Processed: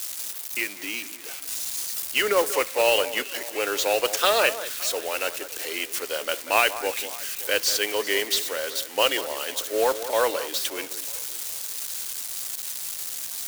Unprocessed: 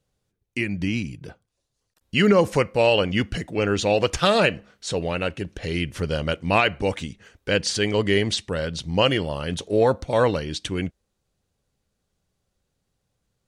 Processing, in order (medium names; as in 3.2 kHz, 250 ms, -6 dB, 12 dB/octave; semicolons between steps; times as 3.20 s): zero-crossing glitches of -22 dBFS; Bessel high-pass 550 Hz, order 8; modulation noise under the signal 13 dB; on a send: echo whose repeats swap between lows and highs 189 ms, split 1.9 kHz, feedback 63%, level -12.5 dB